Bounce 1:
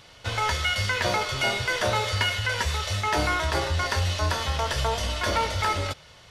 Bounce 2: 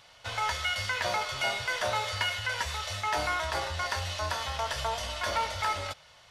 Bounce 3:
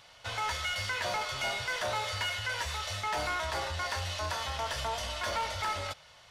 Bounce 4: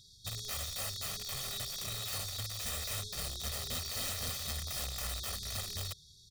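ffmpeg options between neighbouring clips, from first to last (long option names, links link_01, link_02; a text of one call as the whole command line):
ffmpeg -i in.wav -af "lowshelf=frequency=510:width_type=q:width=1.5:gain=-6.5,volume=-5dB" out.wav
ffmpeg -i in.wav -af "asoftclip=type=tanh:threshold=-27dB" out.wav
ffmpeg -i in.wav -af "afftfilt=real='re*(1-between(b*sr/4096,420,3300))':imag='im*(1-between(b*sr/4096,420,3300))':win_size=4096:overlap=0.75,aeval=exprs='(mod(53.1*val(0)+1,2)-1)/53.1':channel_layout=same,aecho=1:1:1.6:0.75" out.wav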